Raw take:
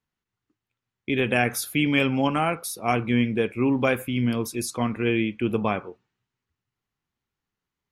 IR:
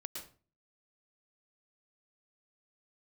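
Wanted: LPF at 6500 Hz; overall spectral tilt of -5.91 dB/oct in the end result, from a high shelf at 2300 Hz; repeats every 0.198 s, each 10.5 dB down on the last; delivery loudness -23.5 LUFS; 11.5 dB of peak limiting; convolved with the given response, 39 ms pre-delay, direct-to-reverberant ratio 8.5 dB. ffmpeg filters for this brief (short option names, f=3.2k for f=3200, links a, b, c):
-filter_complex "[0:a]lowpass=6.5k,highshelf=f=2.3k:g=-6.5,alimiter=limit=-21.5dB:level=0:latency=1,aecho=1:1:198|396|594:0.299|0.0896|0.0269,asplit=2[a][b];[1:a]atrim=start_sample=2205,adelay=39[c];[b][c]afir=irnorm=-1:irlink=0,volume=-6.5dB[d];[a][d]amix=inputs=2:normalize=0,volume=7.5dB"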